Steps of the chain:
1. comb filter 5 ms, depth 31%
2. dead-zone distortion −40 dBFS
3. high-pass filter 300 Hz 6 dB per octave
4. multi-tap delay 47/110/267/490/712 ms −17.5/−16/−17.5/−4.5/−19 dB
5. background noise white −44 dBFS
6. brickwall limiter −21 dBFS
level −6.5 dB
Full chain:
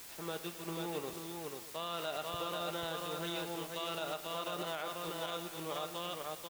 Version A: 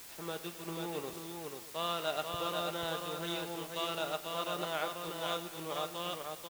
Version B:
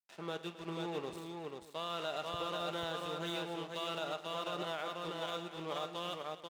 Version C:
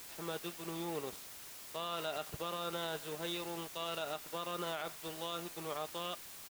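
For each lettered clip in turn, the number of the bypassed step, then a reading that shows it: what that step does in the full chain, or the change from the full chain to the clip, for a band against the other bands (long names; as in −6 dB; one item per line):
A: 6, change in crest factor +6.5 dB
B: 5, 8 kHz band −8.5 dB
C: 4, change in integrated loudness −1.0 LU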